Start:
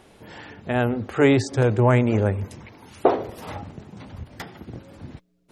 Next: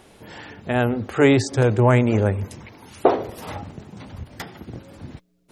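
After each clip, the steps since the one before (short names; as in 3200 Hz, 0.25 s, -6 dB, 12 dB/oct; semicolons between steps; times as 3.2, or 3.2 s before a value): high shelf 4900 Hz +4 dB; gain +1.5 dB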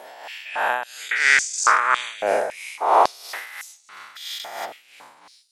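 spectral dilation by 0.48 s; tremolo 3 Hz, depth 63%; stepped high-pass 3.6 Hz 680–6700 Hz; gain -4 dB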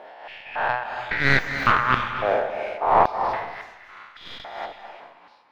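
tracing distortion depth 0.2 ms; air absorption 320 m; reverb RT60 1.0 s, pre-delay 0.218 s, DRR 7.5 dB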